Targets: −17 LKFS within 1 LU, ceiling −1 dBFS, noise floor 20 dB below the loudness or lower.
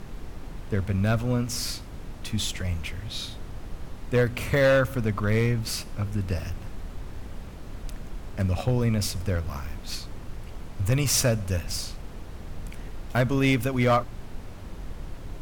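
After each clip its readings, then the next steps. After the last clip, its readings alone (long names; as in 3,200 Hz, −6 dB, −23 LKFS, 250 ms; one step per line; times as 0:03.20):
share of clipped samples 0.6%; peaks flattened at −15.0 dBFS; background noise floor −40 dBFS; target noise floor −47 dBFS; integrated loudness −26.5 LKFS; sample peak −15.0 dBFS; target loudness −17.0 LKFS
→ clipped peaks rebuilt −15 dBFS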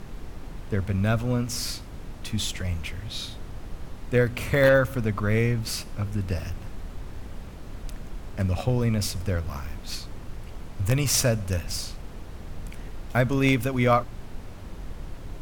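share of clipped samples 0.0%; background noise floor −40 dBFS; target noise floor −46 dBFS
→ noise reduction from a noise print 6 dB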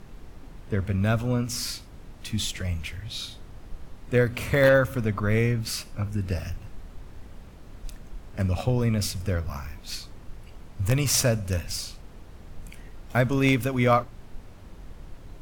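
background noise floor −46 dBFS; integrated loudness −26.0 LKFS; sample peak −6.0 dBFS; target loudness −17.0 LKFS
→ level +9 dB
brickwall limiter −1 dBFS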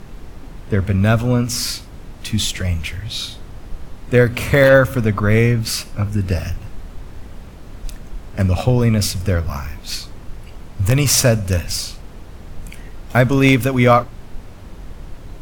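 integrated loudness −17.0 LKFS; sample peak −1.0 dBFS; background noise floor −37 dBFS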